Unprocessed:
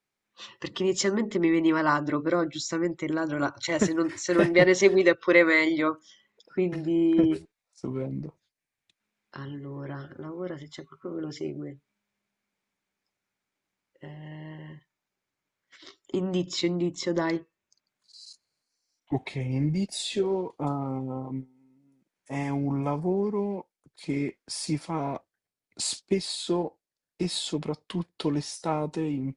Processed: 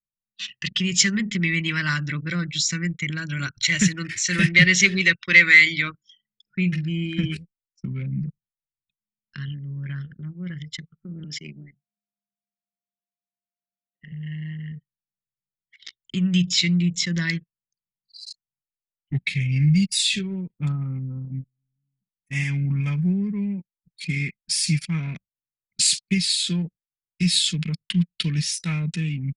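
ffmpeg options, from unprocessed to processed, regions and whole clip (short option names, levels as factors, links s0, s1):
-filter_complex "[0:a]asettb=1/sr,asplit=3[s0][s1][s2];[s0]atrim=end=11.244[s3];[s1]atrim=start=11.24:end=14.12,asetpts=PTS-STARTPTS,afade=t=in:d=0.004:c=qsin,afade=t=out:st=2.876:d=0.004:c=qsin,highpass=f=180:w=0.5412,highpass=f=180:w=1.3066,aeval=exprs='val(0)+0.00178*sin(2*PI*700*n/s)':c=same[s4];[s2]atrim=start=14.116[s5];[s3][s4]acrossfade=d=0.004:c1=hsin:c2=qsin[s6];[s6][s5]acrossfade=d=0.004:c1=qsin:c2=hsin,acontrast=55,firequalizer=gain_entry='entry(100,0);entry(170,9);entry(290,-15);entry(800,-25);entry(1600,3);entry(2400,11);entry(3700,7)':delay=0.05:min_phase=1,anlmdn=10,volume=0.794"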